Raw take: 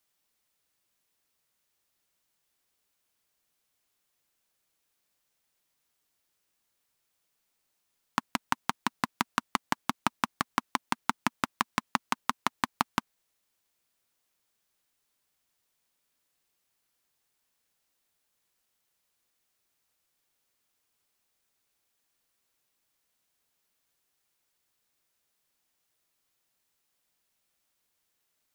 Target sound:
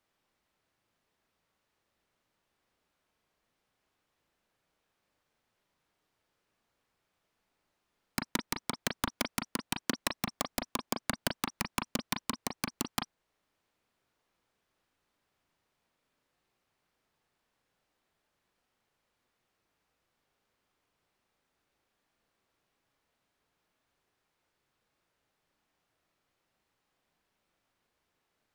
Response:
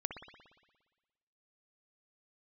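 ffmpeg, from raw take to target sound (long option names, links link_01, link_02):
-filter_complex "[0:a]lowpass=frequency=1400:poles=1,asplit=2[link_01][link_02];[link_02]alimiter=limit=-19dB:level=0:latency=1:release=439,volume=-1dB[link_03];[link_01][link_03]amix=inputs=2:normalize=0,aeval=exprs='(mod(8.91*val(0)+1,2)-1)/8.91':channel_layout=same[link_04];[1:a]atrim=start_sample=2205,atrim=end_sample=4410,asetrate=70560,aresample=44100[link_05];[link_04][link_05]afir=irnorm=-1:irlink=0,volume=6.5dB"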